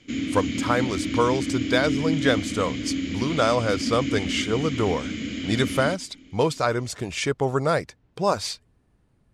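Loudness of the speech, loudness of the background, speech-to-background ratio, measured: -25.5 LUFS, -28.0 LUFS, 2.5 dB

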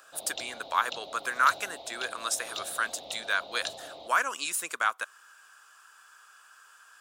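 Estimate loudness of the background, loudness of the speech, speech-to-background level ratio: -41.0 LUFS, -30.5 LUFS, 10.5 dB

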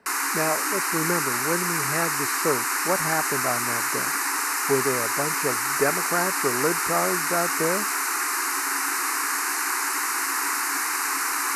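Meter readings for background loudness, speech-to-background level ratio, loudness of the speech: -23.5 LUFS, -5.0 dB, -28.5 LUFS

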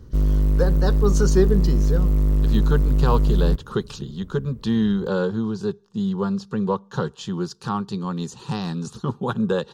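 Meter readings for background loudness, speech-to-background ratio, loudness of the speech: -21.0 LUFS, -4.5 dB, -25.5 LUFS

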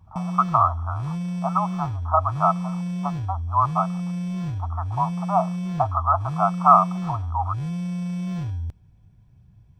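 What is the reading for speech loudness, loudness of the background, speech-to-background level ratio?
-23.0 LUFS, -29.0 LUFS, 6.0 dB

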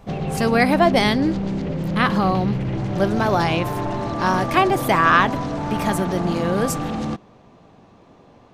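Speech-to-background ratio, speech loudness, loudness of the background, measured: 5.0 dB, -20.5 LUFS, -25.5 LUFS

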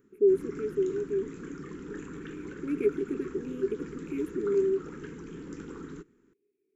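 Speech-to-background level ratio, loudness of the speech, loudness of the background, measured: 12.0 dB, -30.0 LUFS, -42.0 LUFS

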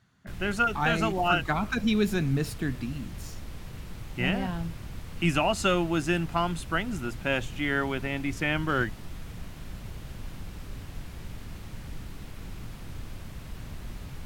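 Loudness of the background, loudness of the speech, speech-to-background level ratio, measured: -42.5 LUFS, -28.0 LUFS, 14.5 dB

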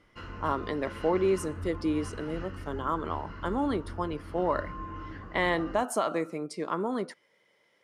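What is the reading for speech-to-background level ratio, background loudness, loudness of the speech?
11.0 dB, -42.0 LUFS, -31.0 LUFS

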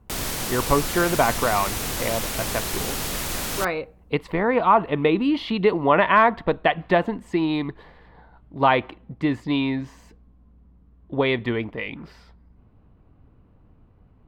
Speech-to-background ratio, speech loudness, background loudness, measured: 4.0 dB, -23.0 LUFS, -27.0 LUFS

